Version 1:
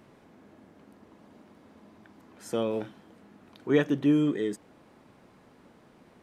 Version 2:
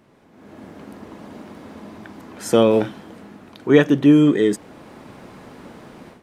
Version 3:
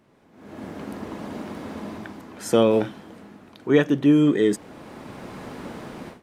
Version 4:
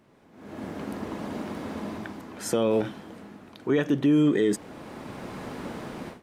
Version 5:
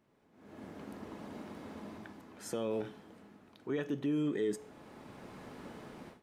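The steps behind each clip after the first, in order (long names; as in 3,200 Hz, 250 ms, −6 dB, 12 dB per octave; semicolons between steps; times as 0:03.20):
automatic gain control gain up to 16 dB
automatic gain control gain up to 9.5 dB; level −5 dB
brickwall limiter −14.5 dBFS, peak gain reduction 8.5 dB
tuned comb filter 430 Hz, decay 0.54 s, mix 60%; level −4.5 dB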